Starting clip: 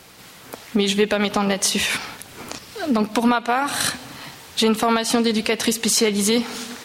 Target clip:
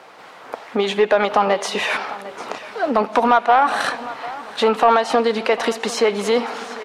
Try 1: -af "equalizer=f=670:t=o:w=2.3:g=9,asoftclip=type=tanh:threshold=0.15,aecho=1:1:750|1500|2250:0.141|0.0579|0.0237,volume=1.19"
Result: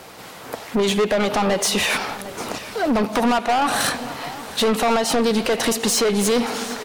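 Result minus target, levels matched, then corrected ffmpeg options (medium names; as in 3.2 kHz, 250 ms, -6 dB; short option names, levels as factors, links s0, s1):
saturation: distortion +13 dB; 1 kHz band -3.5 dB
-af "bandpass=f=1100:t=q:w=0.61:csg=0,equalizer=f=670:t=o:w=2.3:g=9,asoftclip=type=tanh:threshold=0.562,aecho=1:1:750|1500|2250:0.141|0.0579|0.0237,volume=1.19"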